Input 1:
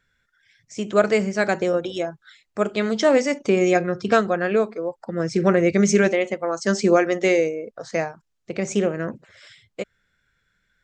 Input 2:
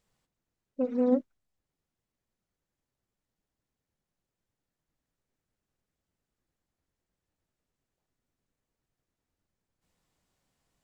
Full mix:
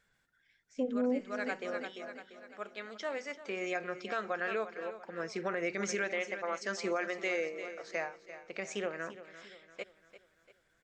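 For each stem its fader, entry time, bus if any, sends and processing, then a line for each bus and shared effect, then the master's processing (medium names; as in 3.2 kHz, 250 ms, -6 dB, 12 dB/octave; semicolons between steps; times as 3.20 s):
1.59 s -4 dB -> 1.99 s -14.5 dB -> 3.19 s -14.5 dB -> 3.97 s -6 dB, 0.00 s, no send, echo send -14.5 dB, band-pass filter 1.9 kHz, Q 0.64; auto duck -15 dB, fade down 1.10 s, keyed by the second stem
-0.5 dB, 0.00 s, no send, echo send -16.5 dB, spectral gate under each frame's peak -30 dB strong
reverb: none
echo: feedback delay 344 ms, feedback 48%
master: peak limiter -24 dBFS, peak gain reduction 10 dB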